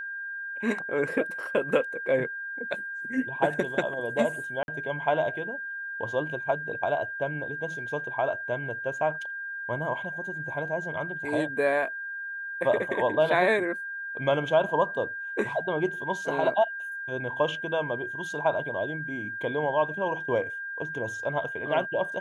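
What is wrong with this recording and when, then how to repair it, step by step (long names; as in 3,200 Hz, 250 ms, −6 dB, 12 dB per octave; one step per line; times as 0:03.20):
whistle 1,600 Hz −33 dBFS
0:04.63–0:04.68: drop-out 51 ms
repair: notch filter 1,600 Hz, Q 30
repair the gap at 0:04.63, 51 ms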